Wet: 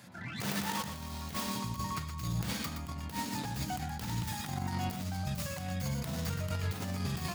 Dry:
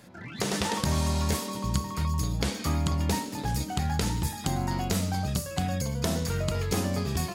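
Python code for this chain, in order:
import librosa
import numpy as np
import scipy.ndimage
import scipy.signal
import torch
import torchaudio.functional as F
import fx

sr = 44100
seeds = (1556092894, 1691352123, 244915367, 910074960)

p1 = fx.tracing_dist(x, sr, depth_ms=0.48)
p2 = scipy.signal.sosfilt(scipy.signal.butter(4, 82.0, 'highpass', fs=sr, output='sos'), p1)
p3 = fx.peak_eq(p2, sr, hz=400.0, db=-10.0, octaves=1.1)
p4 = fx.over_compress(p3, sr, threshold_db=-33.0, ratio=-0.5)
p5 = p4 + fx.echo_single(p4, sr, ms=120, db=-8.0, dry=0)
y = p5 * librosa.db_to_amplitude(-2.5)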